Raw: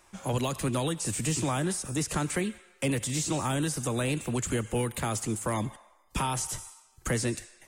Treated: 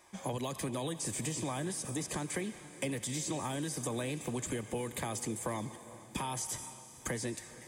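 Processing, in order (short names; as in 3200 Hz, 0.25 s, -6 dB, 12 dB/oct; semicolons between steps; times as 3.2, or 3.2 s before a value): compressor, threshold -32 dBFS, peak gain reduction 8.5 dB; notch comb 1400 Hz; on a send: diffused feedback echo 0.451 s, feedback 53%, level -15.5 dB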